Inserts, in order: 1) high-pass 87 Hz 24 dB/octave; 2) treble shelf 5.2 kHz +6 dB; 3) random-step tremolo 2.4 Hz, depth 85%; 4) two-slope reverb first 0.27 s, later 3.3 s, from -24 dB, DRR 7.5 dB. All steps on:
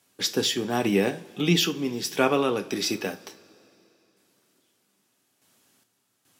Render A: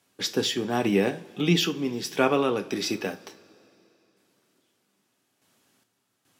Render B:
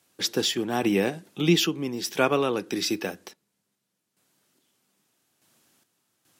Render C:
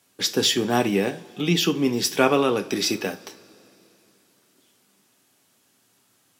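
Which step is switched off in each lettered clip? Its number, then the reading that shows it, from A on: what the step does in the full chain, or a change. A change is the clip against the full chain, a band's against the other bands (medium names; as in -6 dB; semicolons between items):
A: 2, 8 kHz band -3.5 dB; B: 4, momentary loudness spread change +1 LU; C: 3, 125 Hz band -1.5 dB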